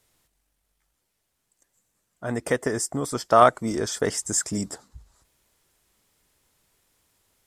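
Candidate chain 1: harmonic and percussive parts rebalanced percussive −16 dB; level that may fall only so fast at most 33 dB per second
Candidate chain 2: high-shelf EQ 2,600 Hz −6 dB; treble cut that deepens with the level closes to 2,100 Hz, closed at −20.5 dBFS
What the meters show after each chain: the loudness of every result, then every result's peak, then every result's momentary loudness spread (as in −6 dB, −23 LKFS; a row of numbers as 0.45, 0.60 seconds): −27.0, −25.0 LKFS; −6.0, −2.5 dBFS; 18, 15 LU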